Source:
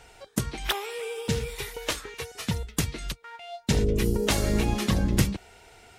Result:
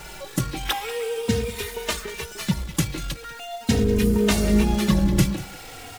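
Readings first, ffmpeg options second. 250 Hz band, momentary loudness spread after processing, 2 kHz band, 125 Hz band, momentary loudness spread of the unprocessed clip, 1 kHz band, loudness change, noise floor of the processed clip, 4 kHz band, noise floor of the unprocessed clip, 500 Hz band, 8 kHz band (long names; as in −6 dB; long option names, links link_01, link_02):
+7.0 dB, 13 LU, +3.0 dB, +3.5 dB, 12 LU, +3.5 dB, +4.5 dB, −40 dBFS, +2.5 dB, −53 dBFS, +4.5 dB, +2.5 dB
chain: -filter_complex "[0:a]aeval=exprs='val(0)+0.5*0.0178*sgn(val(0))':channel_layout=same,equalizer=frequency=210:width_type=o:width=0.59:gain=6,asplit=2[link_01][link_02];[link_02]acrusher=bits=6:dc=4:mix=0:aa=0.000001,volume=-7.5dB[link_03];[link_01][link_03]amix=inputs=2:normalize=0,aecho=1:1:191:0.15,asplit=2[link_04][link_05];[link_05]adelay=3,afreqshift=-0.4[link_06];[link_04][link_06]amix=inputs=2:normalize=1,volume=1dB"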